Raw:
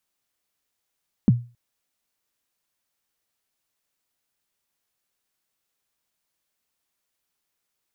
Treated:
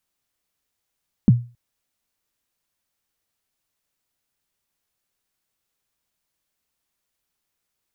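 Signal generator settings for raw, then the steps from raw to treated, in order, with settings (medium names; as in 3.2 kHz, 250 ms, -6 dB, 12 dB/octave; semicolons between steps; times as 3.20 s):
kick drum length 0.27 s, from 260 Hz, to 120 Hz, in 27 ms, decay 0.32 s, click off, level -8.5 dB
bass shelf 160 Hz +6.5 dB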